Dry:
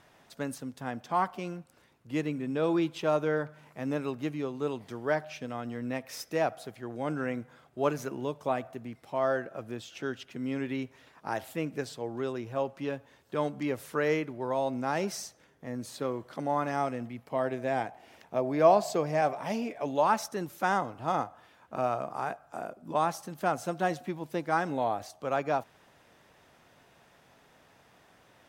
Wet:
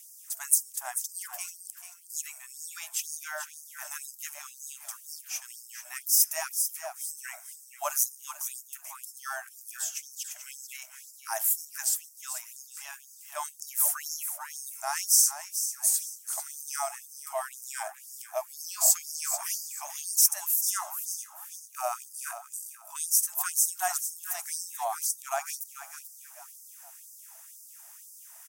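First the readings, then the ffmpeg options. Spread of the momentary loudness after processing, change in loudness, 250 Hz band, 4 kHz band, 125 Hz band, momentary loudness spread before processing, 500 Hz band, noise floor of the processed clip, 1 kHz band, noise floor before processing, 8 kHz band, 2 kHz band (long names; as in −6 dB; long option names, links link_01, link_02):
19 LU, +3.0 dB, below −40 dB, +7.5 dB, below −40 dB, 11 LU, −13.0 dB, −52 dBFS, −7.0 dB, −62 dBFS, +22.0 dB, −3.5 dB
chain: -af "aexciter=amount=7.3:drive=9.9:freq=6000,aecho=1:1:439|878|1317|1756:0.316|0.104|0.0344|0.0114,afftfilt=real='re*gte(b*sr/1024,590*pow(4700/590,0.5+0.5*sin(2*PI*2*pts/sr)))':imag='im*gte(b*sr/1024,590*pow(4700/590,0.5+0.5*sin(2*PI*2*pts/sr)))':win_size=1024:overlap=0.75"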